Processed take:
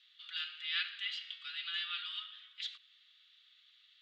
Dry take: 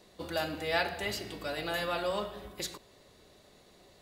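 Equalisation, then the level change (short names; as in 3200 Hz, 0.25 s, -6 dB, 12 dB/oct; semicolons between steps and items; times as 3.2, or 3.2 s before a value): steep high-pass 1200 Hz 96 dB/oct; ladder low-pass 3500 Hz, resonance 75%; tilt +3 dB/oct; 0.0 dB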